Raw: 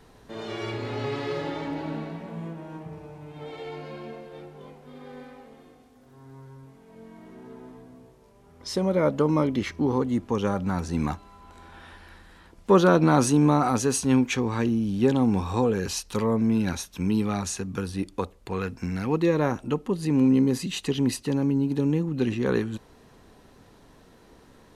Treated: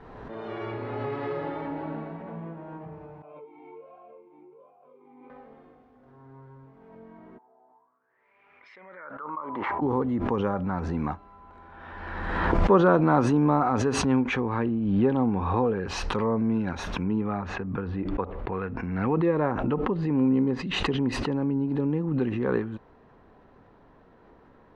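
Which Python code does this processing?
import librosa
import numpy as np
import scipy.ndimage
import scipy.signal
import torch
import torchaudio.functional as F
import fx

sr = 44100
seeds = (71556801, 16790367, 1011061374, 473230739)

y = fx.vowel_sweep(x, sr, vowels='a-u', hz=1.3, at=(3.22, 5.3))
y = fx.wah_lfo(y, sr, hz=fx.line((7.37, 0.76), (9.81, 0.21)), low_hz=730.0, high_hz=2400.0, q=8.5, at=(7.37, 9.81), fade=0.02)
y = fx.lowpass(y, sr, hz=4500.0, slope=24, at=(14.42, 15.87))
y = fx.lowpass(y, sr, hz=fx.line((17.03, 2300.0), (20.72, 5700.0)), slope=12, at=(17.03, 20.72), fade=0.02)
y = scipy.signal.sosfilt(scipy.signal.butter(2, 1300.0, 'lowpass', fs=sr, output='sos'), y)
y = fx.tilt_shelf(y, sr, db=-4.0, hz=650.0)
y = fx.pre_swell(y, sr, db_per_s=32.0)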